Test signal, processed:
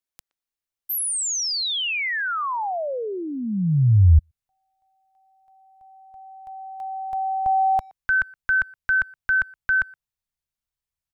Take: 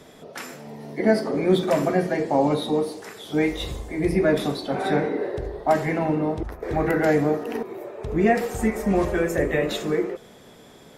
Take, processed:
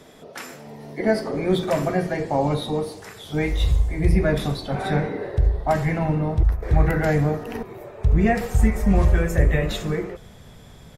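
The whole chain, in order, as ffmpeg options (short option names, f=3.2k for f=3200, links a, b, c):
-filter_complex "[0:a]asplit=2[a][b];[b]adelay=120,highpass=300,lowpass=3.4k,asoftclip=type=hard:threshold=-16dB,volume=-25dB[c];[a][c]amix=inputs=2:normalize=0,asubboost=boost=10:cutoff=100"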